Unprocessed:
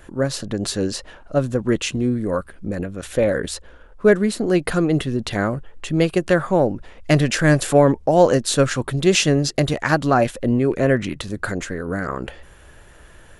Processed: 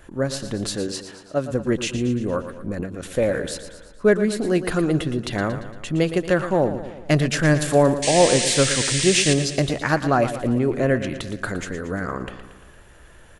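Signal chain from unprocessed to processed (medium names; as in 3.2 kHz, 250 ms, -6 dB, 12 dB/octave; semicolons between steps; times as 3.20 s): 0.76–1.51 s: high-pass 240 Hz 6 dB/octave; 8.02–9.34 s: painted sound noise 1.6–9.6 kHz -22 dBFS; on a send: feedback delay 115 ms, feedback 55%, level -11.5 dB; on the sum: trim -2.5 dB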